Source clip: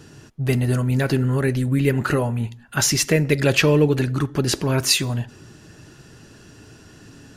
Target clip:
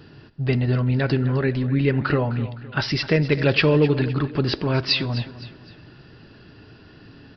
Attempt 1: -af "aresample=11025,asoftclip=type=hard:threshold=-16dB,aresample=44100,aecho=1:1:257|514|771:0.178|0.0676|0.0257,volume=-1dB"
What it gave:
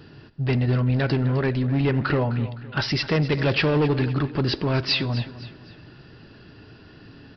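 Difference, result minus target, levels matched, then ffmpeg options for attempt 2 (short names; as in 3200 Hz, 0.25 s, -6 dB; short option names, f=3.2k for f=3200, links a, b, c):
hard clip: distortion +20 dB
-af "aresample=11025,asoftclip=type=hard:threshold=-8.5dB,aresample=44100,aecho=1:1:257|514|771:0.178|0.0676|0.0257,volume=-1dB"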